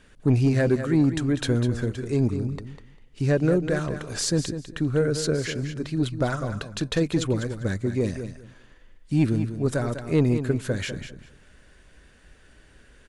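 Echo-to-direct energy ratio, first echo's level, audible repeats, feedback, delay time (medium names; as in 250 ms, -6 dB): -10.0 dB, -10.0 dB, 2, 18%, 199 ms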